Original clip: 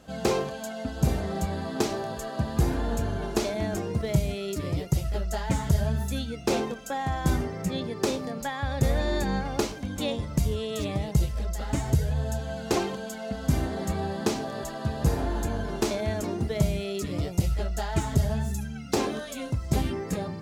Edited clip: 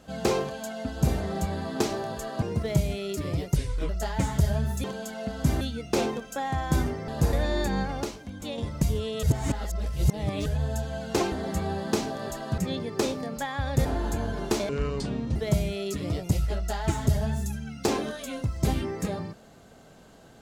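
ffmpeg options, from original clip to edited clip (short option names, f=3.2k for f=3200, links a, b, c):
-filter_complex "[0:a]asplit=17[a][b][c][d][e][f][g][h][i][j][k][l][m][n][o][p][q];[a]atrim=end=2.422[r];[b]atrim=start=3.808:end=4.954[s];[c]atrim=start=4.95:end=5.2,asetpts=PTS-STARTPTS,asetrate=33516,aresample=44100[t];[d]atrim=start=5.196:end=6.152[u];[e]atrim=start=12.878:end=13.652[v];[f]atrim=start=6.148:end=7.622[w];[g]atrim=start=14.908:end=15.162[x];[h]atrim=start=8.888:end=9.592[y];[i]atrim=start=9.588:end=10.142,asetpts=PTS-STARTPTS,volume=-6dB[z];[j]atrim=start=10.138:end=10.792[aa];[k]atrim=start=10.788:end=12.022,asetpts=PTS-STARTPTS,areverse[ab];[l]atrim=start=12.018:end=12.882[ac];[m]atrim=start=13.648:end=14.912[ad];[n]atrim=start=7.618:end=8.892[ae];[o]atrim=start=15.158:end=16.004[af];[p]atrim=start=16:end=16.44,asetpts=PTS-STARTPTS,asetrate=29106,aresample=44100[ag];[q]atrim=start=16.436[ah];[r][s]acrossfade=d=0.004:c1=hsin:c2=hsin[ai];[ai][t]acrossfade=d=0.004:c1=hsin:c2=hsin[aj];[aj][u]acrossfade=d=0.004:c1=hsin:c2=hsin[ak];[ak][v]acrossfade=d=0.004:c1=hsin:c2=hsin[al];[al][w]acrossfade=d=0.004:c1=hsin:c2=hsin[am];[am][x]acrossfade=d=0.004:c1=hsin:c2=hsin[an];[an][y]acrossfade=d=0.004:c1=hsin:c2=hsin[ao];[ao][z]acrossfade=d=0.004:c1=hsin:c2=hsin[ap];[ap][aa]acrossfade=d=0.004:c1=hsin:c2=hsin[aq];[aq][ab]acrossfade=d=0.004:c1=hsin:c2=hsin[ar];[ar][ac]acrossfade=d=0.004:c1=hsin:c2=hsin[as];[as][ad]acrossfade=d=0.004:c1=hsin:c2=hsin[at];[at][ae]acrossfade=d=0.004:c1=hsin:c2=hsin[au];[au][af]acrossfade=d=0.004:c1=hsin:c2=hsin[av];[av][ag]acrossfade=d=0.004:c1=hsin:c2=hsin[aw];[aw][ah]acrossfade=d=0.004:c1=hsin:c2=hsin"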